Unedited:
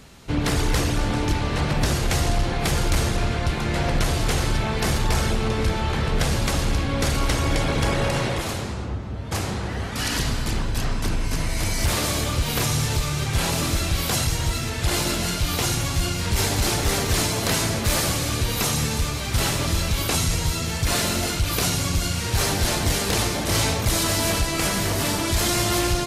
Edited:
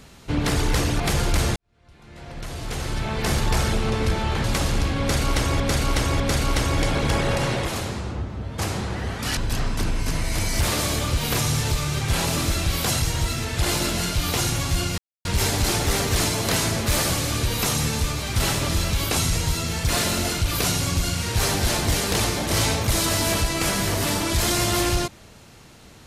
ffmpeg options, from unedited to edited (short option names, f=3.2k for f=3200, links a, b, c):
-filter_complex "[0:a]asplit=8[a][b][c][d][e][f][g][h];[a]atrim=end=1.002[i];[b]atrim=start=2.578:end=3.14,asetpts=PTS-STARTPTS,afade=t=out:st=0.558:d=0.004:c=hsin[j];[c]atrim=start=3.14:end=6.022,asetpts=PTS-STARTPTS,afade=t=in:d=1.78:c=qua[k];[d]atrim=start=6.368:end=7.532[l];[e]atrim=start=6.928:end=7.532[m];[f]atrim=start=6.928:end=10.102[n];[g]atrim=start=10.618:end=16.23,asetpts=PTS-STARTPTS,afade=t=out:st=5.608:d=0.004:c=hsin,apad=pad_dur=0.27[o];[h]atrim=start=16.23,asetpts=PTS-STARTPTS,afade=t=in:d=0.004:c=hsin[p];[j][k]concat=n=2:v=0:a=1[q];[i][q]acrossfade=d=0.004:c1=hsin:c2=hsin[r];[r][l]acrossfade=d=0.004:c1=hsin:c2=hsin[s];[s][m]acrossfade=d=0.004:c1=hsin:c2=hsin[t];[t][n]acrossfade=d=0.004:c1=hsin:c2=hsin[u];[o][p]concat=n=2:v=0:a=1[v];[u][v]acrossfade=d=0.004:c1=hsin:c2=hsin"